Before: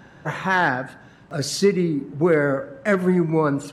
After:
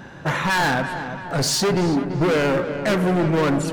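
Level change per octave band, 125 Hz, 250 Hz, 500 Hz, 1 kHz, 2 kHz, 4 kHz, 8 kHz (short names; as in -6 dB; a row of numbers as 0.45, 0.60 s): +2.0, +1.0, -0.5, +2.0, +0.5, +6.5, +6.0 dB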